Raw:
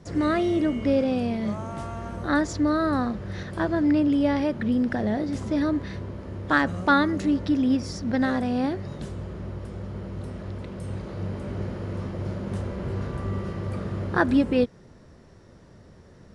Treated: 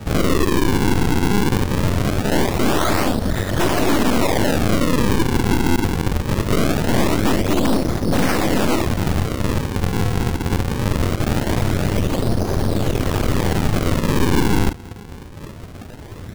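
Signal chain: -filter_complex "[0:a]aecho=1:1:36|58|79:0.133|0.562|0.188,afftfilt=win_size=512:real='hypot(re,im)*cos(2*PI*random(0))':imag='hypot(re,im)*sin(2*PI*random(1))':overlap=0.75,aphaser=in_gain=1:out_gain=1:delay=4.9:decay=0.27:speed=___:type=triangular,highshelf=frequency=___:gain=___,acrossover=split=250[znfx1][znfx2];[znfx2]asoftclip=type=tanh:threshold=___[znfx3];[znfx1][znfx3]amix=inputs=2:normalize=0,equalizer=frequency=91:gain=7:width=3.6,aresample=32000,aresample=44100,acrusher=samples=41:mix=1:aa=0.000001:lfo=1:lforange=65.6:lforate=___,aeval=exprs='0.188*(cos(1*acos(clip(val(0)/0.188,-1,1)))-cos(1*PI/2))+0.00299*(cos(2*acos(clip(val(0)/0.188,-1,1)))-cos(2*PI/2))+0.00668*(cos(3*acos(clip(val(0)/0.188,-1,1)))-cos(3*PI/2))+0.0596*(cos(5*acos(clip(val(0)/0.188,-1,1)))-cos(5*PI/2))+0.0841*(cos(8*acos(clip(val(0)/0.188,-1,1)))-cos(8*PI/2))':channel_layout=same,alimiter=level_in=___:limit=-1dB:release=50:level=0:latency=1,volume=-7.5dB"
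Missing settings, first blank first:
1.1, 5.5k, -7.5, -22dB, 0.22, 18.5dB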